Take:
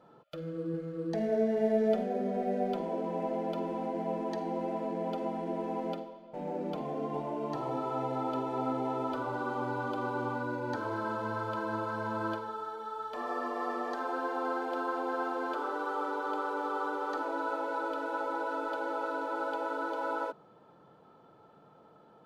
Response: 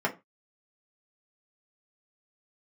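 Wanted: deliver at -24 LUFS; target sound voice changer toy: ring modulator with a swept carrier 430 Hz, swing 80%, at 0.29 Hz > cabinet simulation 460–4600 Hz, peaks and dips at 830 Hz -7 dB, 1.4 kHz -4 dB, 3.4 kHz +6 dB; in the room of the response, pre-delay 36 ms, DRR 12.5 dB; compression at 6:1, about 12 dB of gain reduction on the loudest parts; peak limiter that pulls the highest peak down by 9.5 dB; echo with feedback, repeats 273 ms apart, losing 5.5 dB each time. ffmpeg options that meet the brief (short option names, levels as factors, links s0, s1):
-filter_complex "[0:a]acompressor=threshold=0.0158:ratio=6,alimiter=level_in=3.98:limit=0.0631:level=0:latency=1,volume=0.251,aecho=1:1:273|546|819|1092|1365|1638|1911:0.531|0.281|0.149|0.079|0.0419|0.0222|0.0118,asplit=2[s0][s1];[1:a]atrim=start_sample=2205,adelay=36[s2];[s1][s2]afir=irnorm=-1:irlink=0,volume=0.0708[s3];[s0][s3]amix=inputs=2:normalize=0,aeval=exprs='val(0)*sin(2*PI*430*n/s+430*0.8/0.29*sin(2*PI*0.29*n/s))':c=same,highpass=460,equalizer=f=830:t=q:w=4:g=-7,equalizer=f=1400:t=q:w=4:g=-4,equalizer=f=3400:t=q:w=4:g=6,lowpass=f=4600:w=0.5412,lowpass=f=4600:w=1.3066,volume=17.8"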